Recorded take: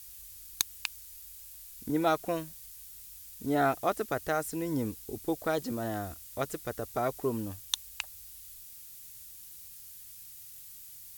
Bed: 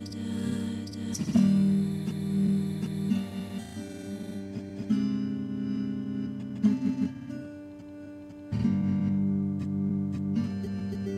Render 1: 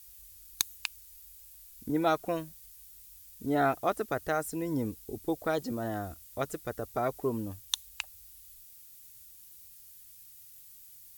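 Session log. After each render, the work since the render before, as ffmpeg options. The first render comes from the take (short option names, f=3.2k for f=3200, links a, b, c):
-af "afftdn=nr=6:nf=-49"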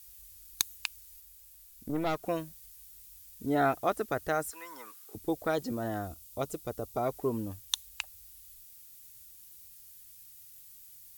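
-filter_complex "[0:a]asettb=1/sr,asplit=3[a][b][c];[a]atrim=end=1.204[d];[b]atrim=start=1.2:end=2.23,asetpts=PTS-STARTPTS,afade=t=in:d=0.004:c=qsin,afade=t=out:st=1.026:d=0.004:c=qsin,aeval=exprs='(tanh(17.8*val(0)+0.55)-tanh(0.55))/17.8':c=same[e];[c]atrim=start=2.226[f];[d][e]acrossfade=d=0.004:c1=hsin:c2=qsin[g];[g][f]acrossfade=d=0.004:c1=qsin:c2=hsin,asettb=1/sr,asplit=3[h][i][j];[h]atrim=end=4.514[k];[i]atrim=start=4.51:end=5.15,asetpts=PTS-STARTPTS,afade=t=in:d=0.004:c=qsin,afade=t=out:st=0.636:d=0.004:c=qsin,highpass=f=1.2k:t=q:w=5.9[l];[j]atrim=start=5.146[m];[k][l]acrossfade=d=0.004:c1=hsin:c2=qsin[n];[n][m]acrossfade=d=0.004:c1=qsin:c2=hsin,asettb=1/sr,asplit=3[o][p][q];[o]atrim=end=6.074[r];[p]atrim=start=6.07:end=7.08,asetpts=PTS-STARTPTS,afade=t=in:d=0.004:c=qsin,afade=t=out:st=1.006:d=0.004:c=qsin,equalizer=f=1.7k:t=o:w=0.49:g=-13.5[s];[q]atrim=start=7.076[t];[r][s]acrossfade=d=0.004:c1=hsin:c2=qsin[u];[u][t]acrossfade=d=0.004:c1=qsin:c2=hsin"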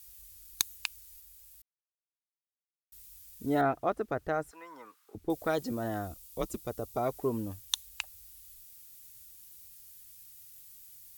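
-filter_complex "[0:a]asettb=1/sr,asplit=3[a][b][c];[a]atrim=end=3.614[d];[b]atrim=start=3.61:end=5.3,asetpts=PTS-STARTPTS,afade=t=in:d=0.004:c=qsin,afade=t=out:st=1.686:d=0.004:c=qsin,lowpass=f=1.4k:p=1[e];[c]atrim=start=5.296[f];[d][e]acrossfade=d=0.004:c1=hsin:c2=qsin[g];[g][f]acrossfade=d=0.004:c1=qsin:c2=hsin,asettb=1/sr,asplit=3[h][i][j];[h]atrim=end=6.144[k];[i]atrim=start=6.14:end=6.57,asetpts=PTS-STARTPTS,afade=t=in:d=0.004:c=qsin,afade=t=out:st=0.426:d=0.004:c=qsin,afreqshift=-100[l];[j]atrim=start=6.566[m];[k][l]acrossfade=d=0.004:c1=hsin:c2=qsin[n];[n][m]acrossfade=d=0.004:c1=qsin:c2=hsin,asplit=3[o][p][q];[o]atrim=end=1.62,asetpts=PTS-STARTPTS,afade=t=out:st=1.616:d=0.004:c=hsin[r];[p]atrim=start=1.62:end=2.92,asetpts=PTS-STARTPTS,volume=0[s];[q]atrim=start=2.92,asetpts=PTS-STARTPTS,afade=t=in:d=0.004:c=hsin[t];[r][s][t]concat=n=3:v=0:a=1"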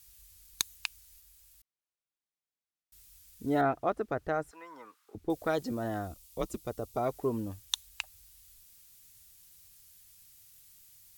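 -af "highshelf=f=11k:g=-8"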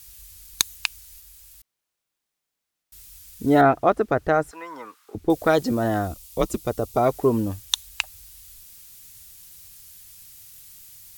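-af "volume=11.5dB,alimiter=limit=-2dB:level=0:latency=1"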